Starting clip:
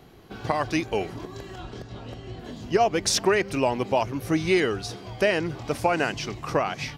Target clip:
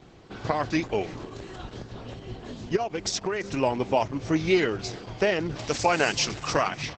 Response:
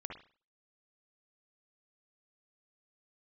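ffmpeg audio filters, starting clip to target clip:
-filter_complex "[0:a]asplit=3[a][b][c];[a]afade=t=out:st=2.75:d=0.02[d];[b]acompressor=threshold=-26dB:ratio=4,afade=t=in:st=2.75:d=0.02,afade=t=out:st=3.43:d=0.02[e];[c]afade=t=in:st=3.43:d=0.02[f];[d][e][f]amix=inputs=3:normalize=0,asplit=3[g][h][i];[g]afade=t=out:st=5.55:d=0.02[j];[h]equalizer=f=7k:t=o:w=2.9:g=11.5,afade=t=in:st=5.55:d=0.02,afade=t=out:st=6.67:d=0.02[k];[i]afade=t=in:st=6.67:d=0.02[l];[j][k][l]amix=inputs=3:normalize=0,aecho=1:1:337|674:0.0794|0.0183" -ar 48000 -c:a libopus -b:a 10k

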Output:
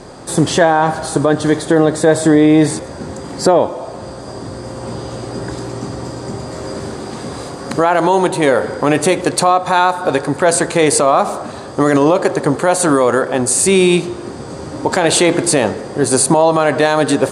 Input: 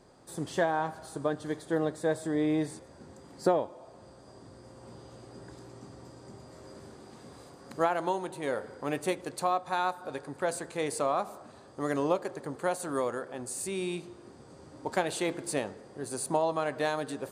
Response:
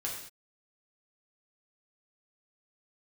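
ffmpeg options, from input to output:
-af "lowpass=f=11k:w=0.5412,lowpass=f=11k:w=1.3066,alimiter=level_in=24.5dB:limit=-1dB:release=50:level=0:latency=1,volume=-1dB"

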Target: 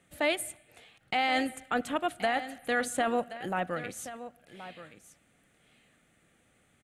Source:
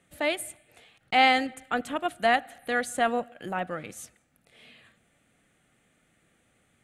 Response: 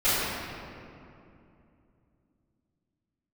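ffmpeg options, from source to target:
-filter_complex "[0:a]alimiter=limit=-18.5dB:level=0:latency=1:release=14,asplit=2[a][b];[b]aecho=0:1:1075:0.2[c];[a][c]amix=inputs=2:normalize=0"

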